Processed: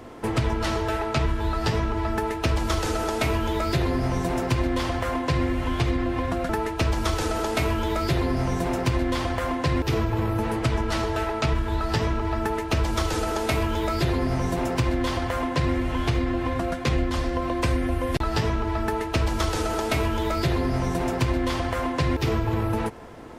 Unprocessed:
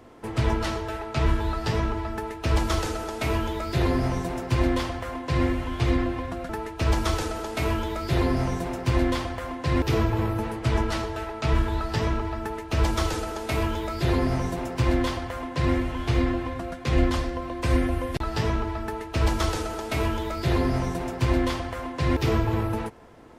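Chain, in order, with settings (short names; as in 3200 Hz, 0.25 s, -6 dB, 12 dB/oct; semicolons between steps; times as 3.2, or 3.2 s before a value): compressor, threshold -28 dBFS, peak gain reduction 12 dB; gain +7.5 dB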